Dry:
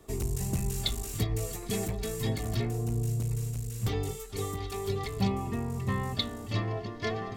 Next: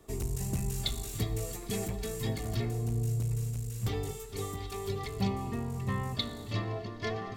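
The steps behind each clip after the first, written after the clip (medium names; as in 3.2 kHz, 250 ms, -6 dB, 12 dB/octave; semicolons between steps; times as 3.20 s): Schroeder reverb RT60 1.9 s, combs from 26 ms, DRR 14 dB; trim -2.5 dB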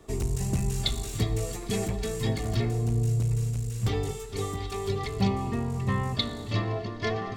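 peaking EQ 14 kHz -11 dB 0.68 oct; trim +5.5 dB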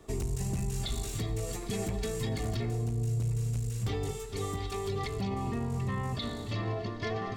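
peak limiter -23 dBFS, peak gain reduction 11 dB; trim -1.5 dB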